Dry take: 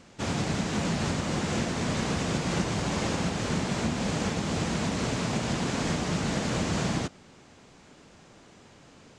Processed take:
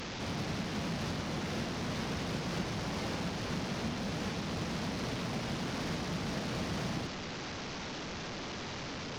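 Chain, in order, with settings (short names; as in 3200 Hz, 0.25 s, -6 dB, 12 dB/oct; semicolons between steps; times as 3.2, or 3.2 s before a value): delta modulation 32 kbps, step -30 dBFS; in parallel at -5.5 dB: wavefolder -32.5 dBFS; on the sum: gain -8 dB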